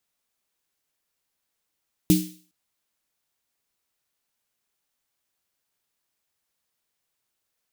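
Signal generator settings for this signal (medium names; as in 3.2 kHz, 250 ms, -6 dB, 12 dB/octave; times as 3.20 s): snare drum length 0.41 s, tones 180 Hz, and 310 Hz, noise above 2.6 kHz, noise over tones -10 dB, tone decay 0.38 s, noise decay 0.47 s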